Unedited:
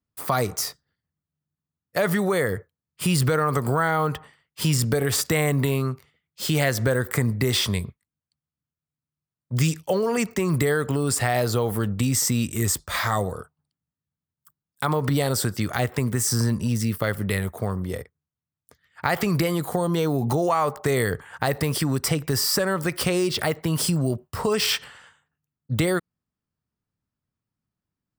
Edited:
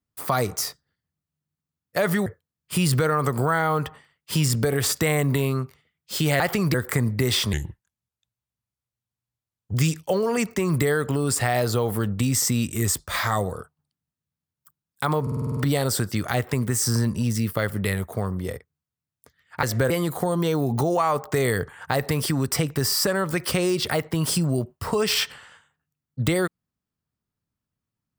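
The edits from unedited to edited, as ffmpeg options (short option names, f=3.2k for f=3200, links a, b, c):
-filter_complex "[0:a]asplit=15[a][b][c][d][e][f][g][h][i][j][k][l][m][n][o];[a]atrim=end=2.262[p];[b]atrim=start=2.548:end=6.692[q];[c]atrim=start=19.078:end=19.422[r];[d]atrim=start=6.958:end=7.754[s];[e]atrim=start=7.75:end=9.54,asetpts=PTS-STARTPTS,asetrate=35721,aresample=44100[t];[f]atrim=start=9.536:end=15.072[u];[g]atrim=start=15.018:end=15.072[v];[h]atrim=start=15.018:end=15.072[w];[i]atrim=start=15.018:end=15.072[x];[j]atrim=start=15.018:end=15.072[y];[k]atrim=start=15.018:end=15.072[z];[l]atrim=start=15.018:end=15.072[aa];[m]atrim=start=15.018:end=19.082[ab];[n]atrim=start=6.688:end=6.962[ac];[o]atrim=start=19.418[ad];[p][q]acrossfade=d=0.004:c1=hsin:c2=hsin[ae];[ae][r]acrossfade=d=0.004:c1=hsin:c2=hsin[af];[af][s]acrossfade=d=0.004:c1=hsin:c2=hsin[ag];[ag][t]acrossfade=d=0.004:c1=hsin:c2=hsin[ah];[ah][u]acrossfade=d=0.004:c1=hsin:c2=hsin[ai];[ai][v]acrossfade=d=0.004:c1=hsin:c2=hsin[aj];[aj][w]acrossfade=d=0.004:c1=hsin:c2=hsin[ak];[ak][x]acrossfade=d=0.004:c1=hsin:c2=hsin[al];[al][y]acrossfade=d=0.004:c1=hsin:c2=hsin[am];[am][z]acrossfade=d=0.004:c1=hsin:c2=hsin[an];[an][aa]acrossfade=d=0.004:c1=hsin:c2=hsin[ao];[ao][ab]acrossfade=d=0.004:c1=hsin:c2=hsin[ap];[ap][ac]acrossfade=d=0.004:c1=hsin:c2=hsin[aq];[aq][ad]acrossfade=d=0.004:c1=hsin:c2=hsin"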